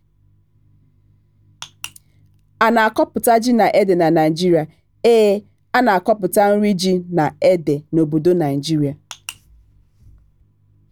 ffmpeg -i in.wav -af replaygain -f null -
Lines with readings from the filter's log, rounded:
track_gain = -2.9 dB
track_peak = 0.575